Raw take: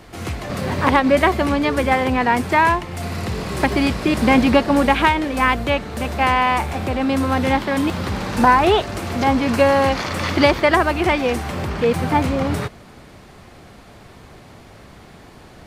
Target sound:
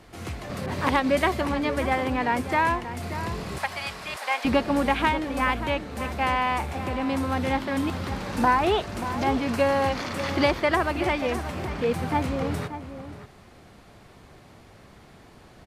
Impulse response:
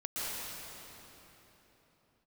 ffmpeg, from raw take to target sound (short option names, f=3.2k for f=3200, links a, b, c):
-filter_complex "[0:a]asettb=1/sr,asplit=3[a][b][c];[a]atrim=end=3.584[d];[b]atrim=start=3.58:end=4.45,asetpts=PTS-STARTPTS,afade=t=in:d=0.004:c=qsin,afade=t=out:st=0.866:d=0.004:c=qsin,highpass=f=690:w=0.5412,highpass=f=690:w=1.3066[e];[c]atrim=start=4.446[f];[d][e]acrossfade=d=0.004:c1=hsin:c2=qsin[g];[g][f]acrossfade=d=0.004:c1=qsin:c2=hsin,asplit=2[h][i];[i]adelay=583.1,volume=-11dB,highshelf=f=4k:g=-13.1[j];[h][j]amix=inputs=2:normalize=0[k];[1:a]atrim=start_sample=2205,atrim=end_sample=3528,asetrate=26901,aresample=44100[l];[k][l]afir=irnorm=-1:irlink=0,asettb=1/sr,asplit=3[m][n][o];[m]atrim=end=0.664[p];[n]atrim=start=0.66:end=1.41,asetpts=PTS-STARTPTS,afade=t=in:d=0.004:c=qsin,afade=t=out:st=0.746:d=0.004:c=qsin,adynamicequalizer=threshold=0.0224:dfrequency=2700:dqfactor=0.7:tfrequency=2700:tqfactor=0.7:attack=5:release=100:ratio=0.375:range=2:mode=boostabove:tftype=highshelf[q];[o]atrim=start=1.406[r];[p][q]acrossfade=d=0.004:c1=hsin:c2=qsin[s];[s][r]acrossfade=d=0.004:c1=qsin:c2=hsin,volume=-5.5dB"